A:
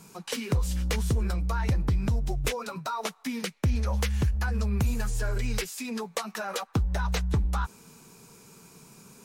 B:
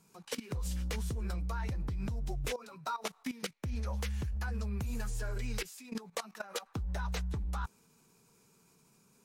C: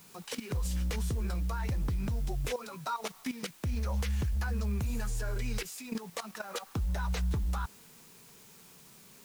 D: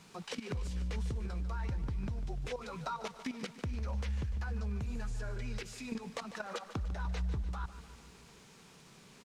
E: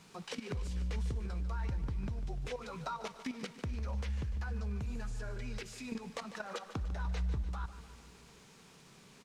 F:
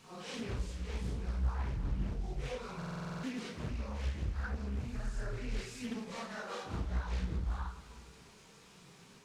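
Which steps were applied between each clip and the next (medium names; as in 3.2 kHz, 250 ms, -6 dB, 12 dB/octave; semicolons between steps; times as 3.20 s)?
level held to a coarse grid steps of 16 dB; trim -2.5 dB
peak limiter -32.5 dBFS, peak gain reduction 9 dB; added noise white -64 dBFS; trim +6.5 dB
compression 4:1, threshold -37 dBFS, peak gain reduction 7.5 dB; distance through air 77 m; on a send: feedback delay 148 ms, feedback 57%, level -13.5 dB; on the sum: trim +1.5 dB
reverberation, pre-delay 3 ms, DRR 17 dB; trim -1 dB
phase randomisation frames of 200 ms; buffer glitch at 2.77 s, samples 2048, times 9; loudspeaker Doppler distortion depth 0.88 ms; trim +1 dB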